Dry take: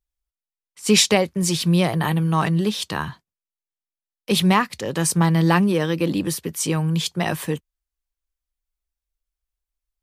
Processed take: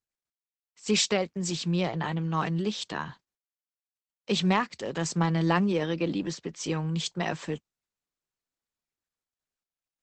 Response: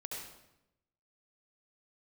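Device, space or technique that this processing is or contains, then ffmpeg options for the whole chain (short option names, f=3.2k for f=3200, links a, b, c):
video call: -filter_complex "[0:a]asettb=1/sr,asplit=3[a][b][c];[a]atrim=end=5.804[d];[b]atrim=start=5.8:end=6.67,asetpts=PTS-STARTPTS,afade=t=in:d=0.004:c=qsin,afade=t=out:st=0.866:d=0.004:c=qsin,lowpass=6.1k[e];[c]atrim=start=6.666[f];[d][e]acrossfade=d=0.004:c1=hsin:c2=qsin[g];[g][f]acrossfade=d=0.004:c1=qsin:c2=hsin,highpass=150,dynaudnorm=f=370:g=13:m=5.5dB,volume=-8dB" -ar 48000 -c:a libopus -b:a 12k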